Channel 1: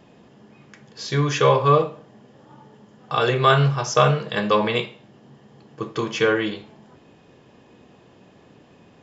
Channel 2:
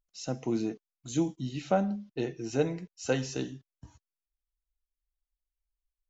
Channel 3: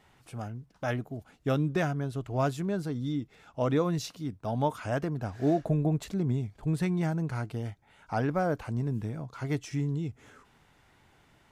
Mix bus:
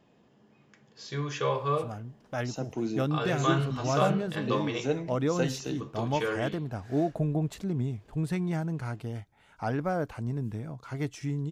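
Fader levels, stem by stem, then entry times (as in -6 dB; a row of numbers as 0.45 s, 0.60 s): -12.0 dB, -1.5 dB, -1.5 dB; 0.00 s, 2.30 s, 1.50 s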